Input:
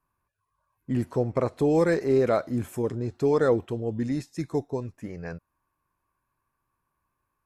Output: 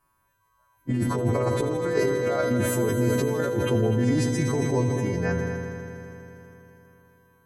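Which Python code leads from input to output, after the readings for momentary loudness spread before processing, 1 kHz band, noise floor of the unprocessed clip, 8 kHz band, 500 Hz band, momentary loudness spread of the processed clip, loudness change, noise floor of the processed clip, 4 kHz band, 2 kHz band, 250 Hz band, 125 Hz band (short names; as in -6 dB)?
15 LU, +1.5 dB, -80 dBFS, n/a, +0.5 dB, 13 LU, +1.5 dB, -69 dBFS, +9.0 dB, +6.0 dB, +2.5 dB, +6.5 dB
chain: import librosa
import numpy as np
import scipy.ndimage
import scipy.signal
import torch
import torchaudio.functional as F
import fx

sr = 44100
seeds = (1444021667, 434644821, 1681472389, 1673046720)

p1 = fx.freq_snap(x, sr, grid_st=2)
p2 = fx.high_shelf(p1, sr, hz=2700.0, db=-8.0)
p3 = fx.over_compress(p2, sr, threshold_db=-30.0, ratio=-1.0)
p4 = p3 + fx.echo_heads(p3, sr, ms=81, heads='all three', feedback_pct=72, wet_db=-14, dry=0)
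p5 = fx.sustainer(p4, sr, db_per_s=24.0)
y = p5 * librosa.db_to_amplitude(4.0)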